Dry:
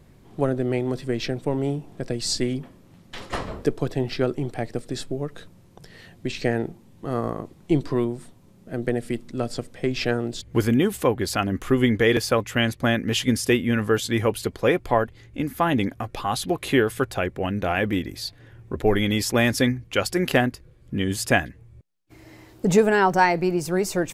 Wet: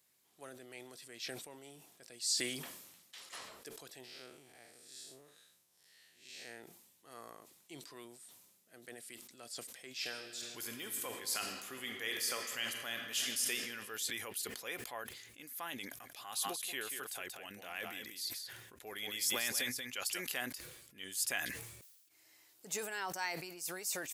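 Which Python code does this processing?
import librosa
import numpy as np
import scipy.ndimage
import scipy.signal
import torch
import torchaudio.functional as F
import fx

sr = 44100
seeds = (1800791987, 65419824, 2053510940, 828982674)

y = fx.spec_blur(x, sr, span_ms=155.0, at=(4.03, 6.59), fade=0.02)
y = fx.reverb_throw(y, sr, start_s=9.9, length_s=3.61, rt60_s=2.8, drr_db=5.0)
y = fx.echo_single(y, sr, ms=183, db=-8.0, at=(16.03, 20.2), fade=0.02)
y = np.diff(y, prepend=0.0)
y = fx.transient(y, sr, attack_db=-3, sustain_db=1)
y = fx.sustainer(y, sr, db_per_s=48.0)
y = F.gain(torch.from_numpy(y), -4.5).numpy()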